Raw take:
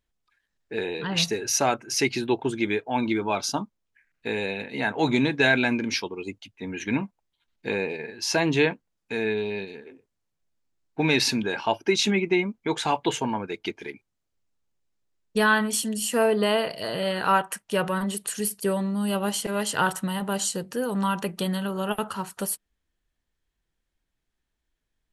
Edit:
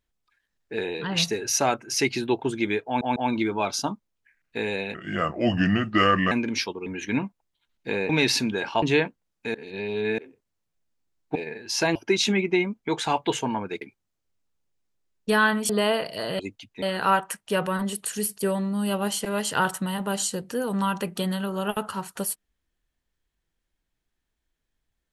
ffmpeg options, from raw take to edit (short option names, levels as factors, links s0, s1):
-filter_complex "[0:a]asplit=16[s0][s1][s2][s3][s4][s5][s6][s7][s8][s9][s10][s11][s12][s13][s14][s15];[s0]atrim=end=3.012[s16];[s1]atrim=start=2.858:end=3.012[s17];[s2]atrim=start=2.858:end=4.644[s18];[s3]atrim=start=4.64:end=5.67,asetpts=PTS-STARTPTS,asetrate=33075,aresample=44100[s19];[s4]atrim=start=5.666:end=6.222[s20];[s5]atrim=start=6.648:end=7.882[s21];[s6]atrim=start=11.008:end=11.742[s22];[s7]atrim=start=8.478:end=9.202[s23];[s8]atrim=start=9.198:end=9.842,asetpts=PTS-STARTPTS,areverse[s24];[s9]atrim=start=9.838:end=11.012[s25];[s10]atrim=start=7.878:end=8.482[s26];[s11]atrim=start=11.738:end=13.602[s27];[s12]atrim=start=13.888:end=15.772[s28];[s13]atrim=start=16.338:end=17.042[s29];[s14]atrim=start=6.218:end=6.652[s30];[s15]atrim=start=17.038[s31];[s16][s17]acrossfade=d=0.004:c1=hsin:c2=hsin[s32];[s32][s18]acrossfade=d=0.004:c1=hsin:c2=hsin[s33];[s33][s19]acrossfade=d=0.004:c1=hsin:c2=hsin[s34];[s34][s20]acrossfade=d=0.004:c1=hsin:c2=hsin[s35];[s35][s21]acrossfade=d=0.004:c1=hsin:c2=hsin[s36];[s36][s22]acrossfade=d=0.004:c1=hsin:c2=hsin[s37];[s37][s23]acrossfade=d=0.004:c1=hsin:c2=hsin[s38];[s38][s24]acrossfade=d=0.004:c1=hsin:c2=hsin[s39];[s39][s25]acrossfade=d=0.004:c1=hsin:c2=hsin[s40];[s40][s26]acrossfade=d=0.004:c1=hsin:c2=hsin[s41];[s41][s27]acrossfade=d=0.004:c1=hsin:c2=hsin[s42];[s42][s28]acrossfade=d=0.004:c1=hsin:c2=hsin[s43];[s43][s29]acrossfade=d=0.004:c1=hsin:c2=hsin[s44];[s44][s30]acrossfade=d=0.004:c1=hsin:c2=hsin[s45];[s45][s31]acrossfade=d=0.004:c1=hsin:c2=hsin"